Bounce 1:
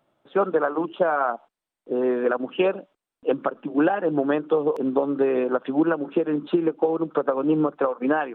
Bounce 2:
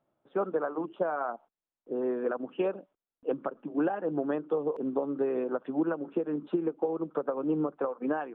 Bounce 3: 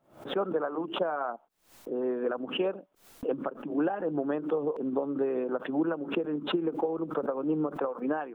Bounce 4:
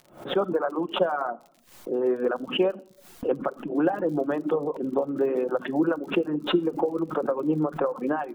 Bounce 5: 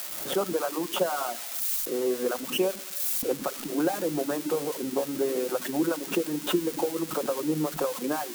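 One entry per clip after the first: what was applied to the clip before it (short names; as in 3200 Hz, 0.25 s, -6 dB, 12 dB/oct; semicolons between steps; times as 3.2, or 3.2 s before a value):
LPF 1200 Hz 6 dB/oct; gain -7.5 dB
backwards sustainer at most 130 dB/s
crackle 53/s -44 dBFS; shoebox room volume 2100 m³, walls furnished, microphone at 0.94 m; reverb removal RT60 0.52 s; gain +5 dB
switching spikes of -20 dBFS; gain -3 dB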